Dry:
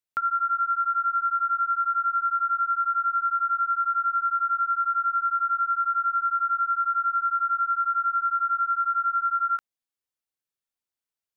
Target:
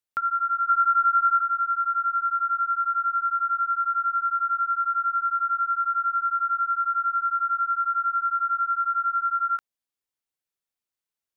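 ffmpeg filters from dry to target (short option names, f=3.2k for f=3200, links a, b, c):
-filter_complex "[0:a]asettb=1/sr,asplit=3[a][b][c];[a]atrim=end=0.694[d];[b]atrim=start=0.69:end=1.41,asetpts=PTS-STARTPTS,afade=t=in:d=0.004:c=qsin,afade=t=out:st=0.716:d=0.004:c=qsin,highpass=f=1.2k:t=q:w=1.6[e];[c]atrim=start=1.406[f];[d][e]acrossfade=d=0.004:c1=hsin:c2=qsin[g];[g][f]acrossfade=d=0.004:c1=qsin:c2=hsin"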